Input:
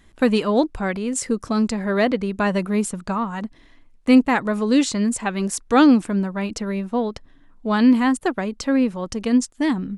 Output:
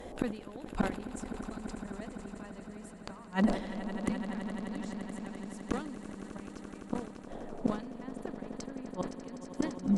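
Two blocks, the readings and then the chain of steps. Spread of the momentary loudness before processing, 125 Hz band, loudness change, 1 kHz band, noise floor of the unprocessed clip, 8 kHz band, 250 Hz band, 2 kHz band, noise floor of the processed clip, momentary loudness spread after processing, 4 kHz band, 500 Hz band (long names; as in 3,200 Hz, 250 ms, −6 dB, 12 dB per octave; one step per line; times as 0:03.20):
10 LU, can't be measured, −17.5 dB, −17.5 dB, −52 dBFS, −21.0 dB, −16.5 dB, −17.5 dB, −48 dBFS, 11 LU, −19.0 dB, −17.0 dB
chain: noise in a band 180–750 Hz −50 dBFS
in parallel at −1.5 dB: brickwall limiter −15 dBFS, peak gain reduction 11 dB
on the sum: gate with flip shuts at −14 dBFS, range −33 dB
echo that builds up and dies away 85 ms, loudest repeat 8, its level −14 dB
reversed playback
upward compression, threshold −42 dBFS
reversed playback
asymmetric clip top −18 dBFS
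level that may fall only so fast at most 110 dB per second
level −1.5 dB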